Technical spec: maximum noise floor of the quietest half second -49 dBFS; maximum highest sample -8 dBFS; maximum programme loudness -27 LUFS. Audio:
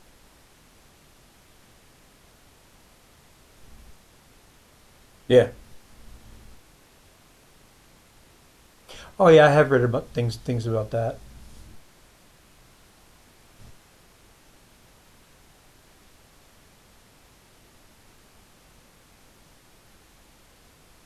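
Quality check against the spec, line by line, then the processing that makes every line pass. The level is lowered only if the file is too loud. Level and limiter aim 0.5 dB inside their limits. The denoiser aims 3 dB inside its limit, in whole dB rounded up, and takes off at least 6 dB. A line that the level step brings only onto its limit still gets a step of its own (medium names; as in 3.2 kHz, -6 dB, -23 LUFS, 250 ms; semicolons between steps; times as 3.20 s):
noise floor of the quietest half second -55 dBFS: pass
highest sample -4.5 dBFS: fail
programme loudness -20.0 LUFS: fail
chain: trim -7.5 dB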